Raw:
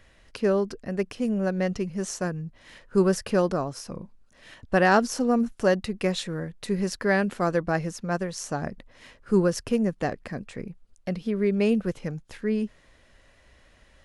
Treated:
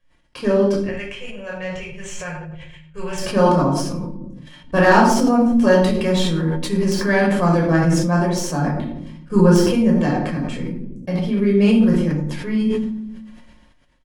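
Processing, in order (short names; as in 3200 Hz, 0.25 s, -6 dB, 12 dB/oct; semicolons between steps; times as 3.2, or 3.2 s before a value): tracing distortion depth 0.027 ms; high shelf 2600 Hz +2.5 dB; comb 5.6 ms, depth 40%; de-hum 51.8 Hz, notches 19; small resonant body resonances 270/900/3200 Hz, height 13 dB, ringing for 65 ms; gate -42 dBFS, range -20 dB; 0.77–3.18 EQ curve 120 Hz 0 dB, 250 Hz -29 dB, 480 Hz -8 dB, 1100 Hz -9 dB, 2600 Hz +7 dB, 5000 Hz -13 dB, 7300 Hz -2 dB, 11000 Hz -16 dB; shoebox room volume 960 m³, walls furnished, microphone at 5.6 m; sustainer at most 36 dB/s; gain -3 dB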